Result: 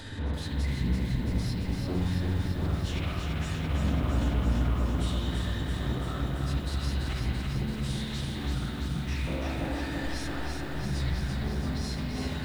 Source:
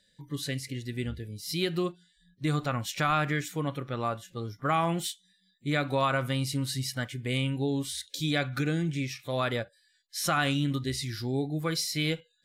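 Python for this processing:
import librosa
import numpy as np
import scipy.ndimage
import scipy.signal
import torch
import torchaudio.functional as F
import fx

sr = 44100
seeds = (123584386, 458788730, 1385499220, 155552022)

y = x + 0.5 * 10.0 ** (-36.0 / 20.0) * np.sign(x)
y = fx.low_shelf(y, sr, hz=190.0, db=7.0)
y = fx.over_compress(y, sr, threshold_db=-31.0, ratio=-0.5)
y = fx.dynamic_eq(y, sr, hz=300.0, q=6.6, threshold_db=-53.0, ratio=4.0, max_db=-4)
y = fx.hum_notches(y, sr, base_hz=50, count=4)
y = fx.rev_spring(y, sr, rt60_s=1.6, pass_ms=(52,), chirp_ms=25, drr_db=-3.0)
y = fx.leveller(y, sr, passes=2)
y = fx.pitch_keep_formants(y, sr, semitones=-11.5)
y = fx.lowpass(y, sr, hz=1400.0, slope=6)
y = fx.echo_crushed(y, sr, ms=336, feedback_pct=80, bits=8, wet_db=-4.0)
y = y * 10.0 ** (-8.5 / 20.0)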